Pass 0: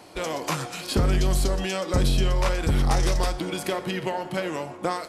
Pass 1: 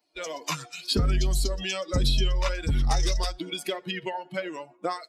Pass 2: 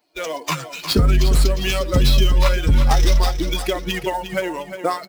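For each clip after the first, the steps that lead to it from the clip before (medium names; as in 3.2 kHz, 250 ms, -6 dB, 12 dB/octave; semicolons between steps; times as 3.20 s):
expander on every frequency bin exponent 2; peaking EQ 4.1 kHz +8.5 dB 1.3 oct
in parallel at -4.5 dB: sample-rate reducer 9.1 kHz, jitter 20%; on the sum: feedback delay 355 ms, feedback 37%, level -10 dB; trim +4.5 dB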